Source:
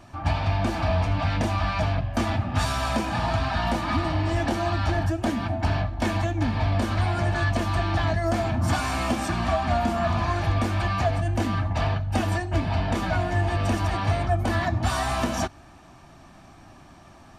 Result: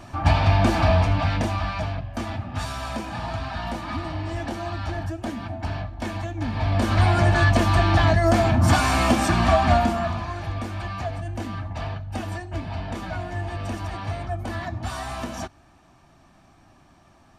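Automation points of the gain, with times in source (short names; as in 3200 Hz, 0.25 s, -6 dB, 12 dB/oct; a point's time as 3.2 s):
0.82 s +6 dB
2.04 s -5 dB
6.32 s -5 dB
7.03 s +6 dB
9.72 s +6 dB
10.26 s -6 dB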